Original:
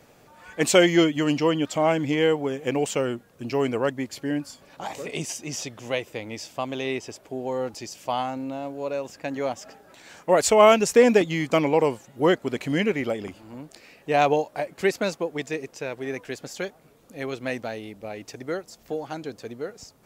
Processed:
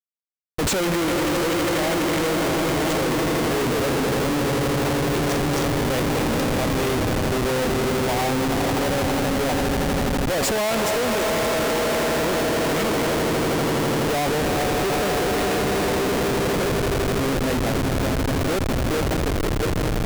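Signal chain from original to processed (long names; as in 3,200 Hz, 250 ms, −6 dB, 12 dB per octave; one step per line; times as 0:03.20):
echo that builds up and dies away 82 ms, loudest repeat 8, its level −11 dB
comparator with hysteresis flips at −28 dBFS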